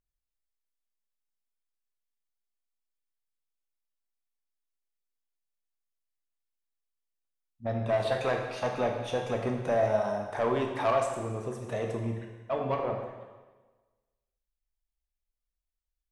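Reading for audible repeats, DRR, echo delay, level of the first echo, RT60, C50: no echo, 1.5 dB, no echo, no echo, 1.3 s, 4.5 dB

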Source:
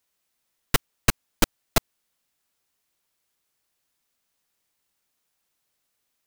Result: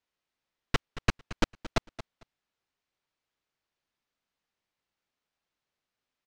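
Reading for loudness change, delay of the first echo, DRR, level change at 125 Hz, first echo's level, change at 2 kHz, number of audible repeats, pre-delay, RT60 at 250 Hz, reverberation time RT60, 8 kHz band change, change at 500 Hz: -7.5 dB, 225 ms, no reverb, -4.5 dB, -15.0 dB, -5.5 dB, 2, no reverb, no reverb, no reverb, -16.5 dB, -5.0 dB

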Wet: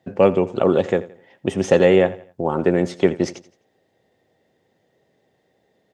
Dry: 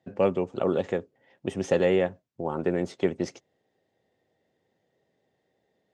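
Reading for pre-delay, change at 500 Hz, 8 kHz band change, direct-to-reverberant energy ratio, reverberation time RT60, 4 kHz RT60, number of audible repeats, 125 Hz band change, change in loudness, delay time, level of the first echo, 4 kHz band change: no reverb, +8.5 dB, +8.5 dB, no reverb, no reverb, no reverb, 2, +8.5 dB, +8.5 dB, 85 ms, -18.0 dB, +8.5 dB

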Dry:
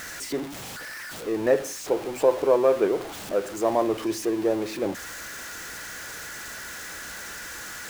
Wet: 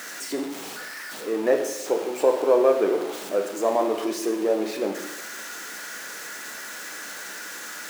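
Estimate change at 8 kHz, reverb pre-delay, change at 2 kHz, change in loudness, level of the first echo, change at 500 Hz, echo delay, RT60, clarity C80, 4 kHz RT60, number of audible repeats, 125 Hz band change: +1.0 dB, 6 ms, +1.0 dB, +1.0 dB, no echo, +1.5 dB, no echo, 1.0 s, 9.5 dB, 0.95 s, no echo, no reading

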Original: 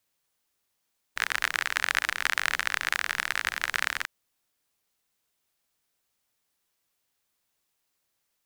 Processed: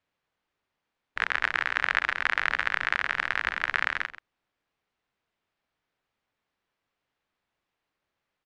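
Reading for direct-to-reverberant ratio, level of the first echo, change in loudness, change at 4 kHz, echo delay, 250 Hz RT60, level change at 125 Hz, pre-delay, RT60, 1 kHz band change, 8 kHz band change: no reverb, -14.0 dB, +1.0 dB, -4.0 dB, 132 ms, no reverb, no reading, no reverb, no reverb, +2.5 dB, under -15 dB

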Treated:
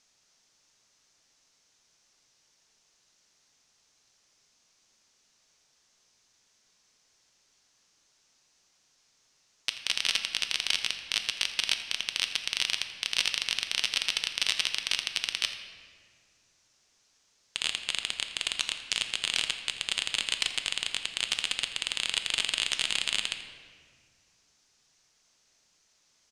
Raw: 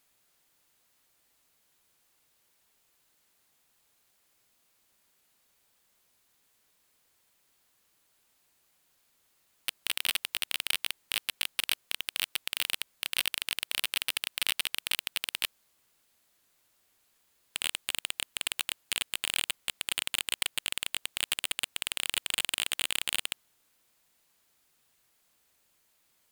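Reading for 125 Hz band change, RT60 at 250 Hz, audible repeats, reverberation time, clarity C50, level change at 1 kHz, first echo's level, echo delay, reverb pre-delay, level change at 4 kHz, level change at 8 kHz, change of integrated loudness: no reading, 2.6 s, 1, 1.8 s, 8.0 dB, +1.0 dB, -16.0 dB, 84 ms, 5 ms, +4.0 dB, 0.0 dB, +2.5 dB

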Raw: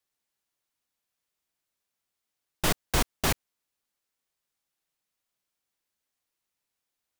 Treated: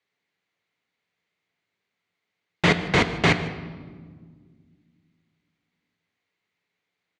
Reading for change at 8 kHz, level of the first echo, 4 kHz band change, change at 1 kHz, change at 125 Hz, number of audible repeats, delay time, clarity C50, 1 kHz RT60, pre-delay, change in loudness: -7.0 dB, -19.0 dB, +5.0 dB, +6.5 dB, +9.0 dB, 1, 153 ms, 10.5 dB, 1.4 s, 3 ms, +7.0 dB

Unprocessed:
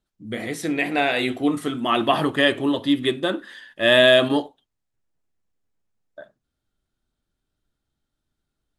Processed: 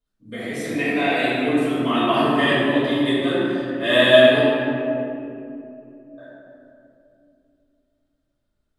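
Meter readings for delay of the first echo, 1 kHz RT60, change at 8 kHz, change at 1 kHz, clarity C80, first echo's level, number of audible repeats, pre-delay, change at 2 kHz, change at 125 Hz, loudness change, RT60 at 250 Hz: no echo, 2.3 s, no reading, +1.5 dB, -2.0 dB, no echo, no echo, 3 ms, +1.5 dB, +3.5 dB, +1.5 dB, 4.0 s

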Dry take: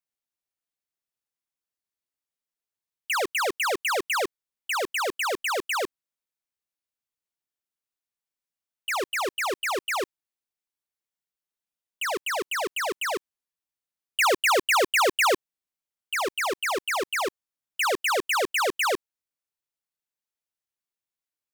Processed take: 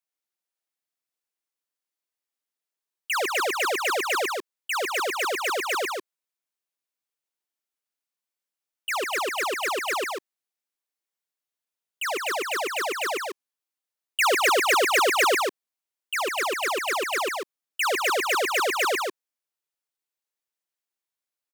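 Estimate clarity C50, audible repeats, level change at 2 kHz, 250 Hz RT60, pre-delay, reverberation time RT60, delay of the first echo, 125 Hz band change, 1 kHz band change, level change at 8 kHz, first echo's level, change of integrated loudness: no reverb, 1, +1.5 dB, no reverb, no reverb, no reverb, 145 ms, no reading, +1.5 dB, +1.5 dB, -4.0 dB, +1.0 dB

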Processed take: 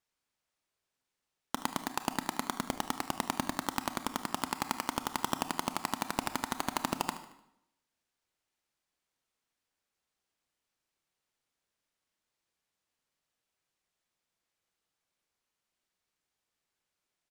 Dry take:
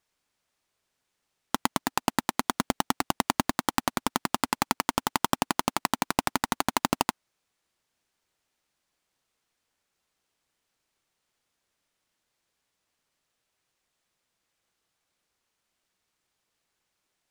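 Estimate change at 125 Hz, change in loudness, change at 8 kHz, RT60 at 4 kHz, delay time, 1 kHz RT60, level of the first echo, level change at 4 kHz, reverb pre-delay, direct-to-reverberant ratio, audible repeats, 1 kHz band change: -7.0 dB, -7.0 dB, -7.0 dB, 0.70 s, 75 ms, 0.80 s, -15.5 dB, -7.0 dB, 25 ms, 9.0 dB, 3, -7.0 dB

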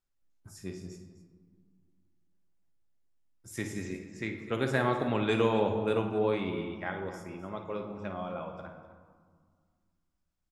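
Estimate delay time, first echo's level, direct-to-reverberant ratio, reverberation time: 54 ms, -11.5 dB, 3.5 dB, 1.8 s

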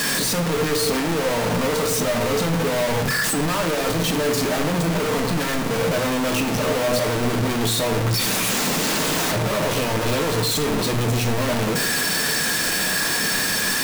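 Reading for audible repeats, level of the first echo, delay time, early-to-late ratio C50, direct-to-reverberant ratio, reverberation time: no echo, no echo, no echo, 10.0 dB, 5.0 dB, 0.85 s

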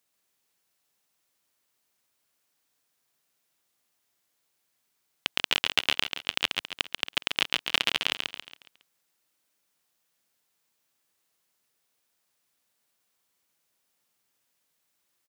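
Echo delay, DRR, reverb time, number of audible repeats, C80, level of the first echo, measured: 138 ms, no reverb, no reverb, 4, no reverb, -4.5 dB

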